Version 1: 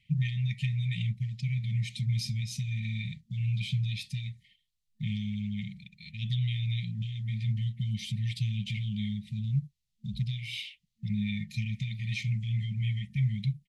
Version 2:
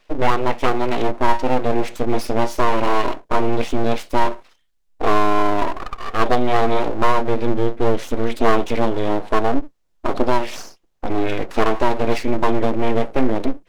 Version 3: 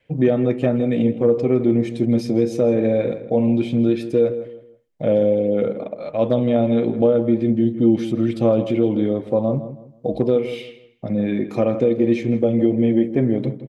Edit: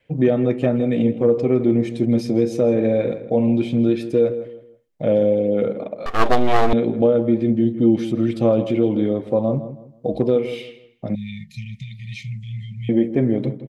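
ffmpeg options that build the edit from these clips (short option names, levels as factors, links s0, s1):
-filter_complex "[2:a]asplit=3[s0][s1][s2];[s0]atrim=end=6.062[s3];[1:a]atrim=start=6.058:end=6.732[s4];[s1]atrim=start=6.728:end=11.152[s5];[0:a]atrim=start=11.148:end=12.892[s6];[s2]atrim=start=12.888[s7];[s3][s4]acrossfade=d=0.004:c1=hsin:c2=hsin[s8];[s8][s5]acrossfade=d=0.004:c1=hsin:c2=hsin[s9];[s9][s6]acrossfade=d=0.004:c1=hsin:c2=hsin[s10];[s10][s7]acrossfade=d=0.004:c1=hsin:c2=hsin"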